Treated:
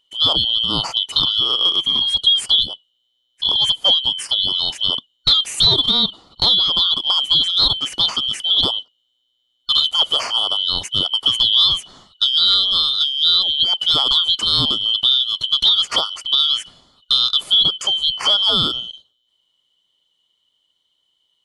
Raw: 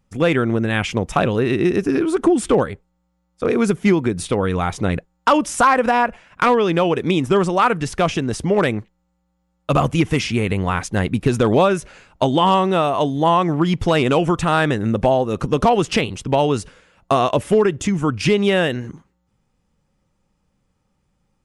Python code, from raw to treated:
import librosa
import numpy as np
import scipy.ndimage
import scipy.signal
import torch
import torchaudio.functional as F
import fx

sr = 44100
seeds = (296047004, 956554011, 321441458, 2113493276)

y = fx.band_shuffle(x, sr, order='2413')